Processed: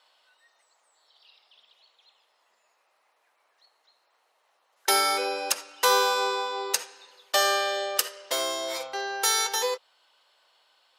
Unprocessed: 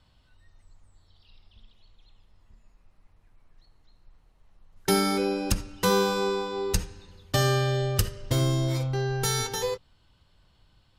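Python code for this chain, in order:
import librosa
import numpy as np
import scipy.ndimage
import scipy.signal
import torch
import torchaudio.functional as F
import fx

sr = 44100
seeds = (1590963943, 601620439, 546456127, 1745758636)

y = scipy.signal.sosfilt(scipy.signal.butter(4, 540.0, 'highpass', fs=sr, output='sos'), x)
y = y * librosa.db_to_amplitude(5.0)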